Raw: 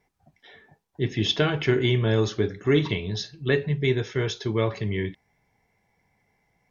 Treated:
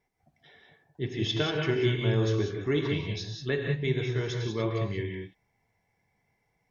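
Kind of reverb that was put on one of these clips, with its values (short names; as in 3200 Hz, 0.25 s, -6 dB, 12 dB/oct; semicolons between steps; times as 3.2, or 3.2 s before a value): non-linear reverb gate 0.21 s rising, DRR 2 dB; gain -7 dB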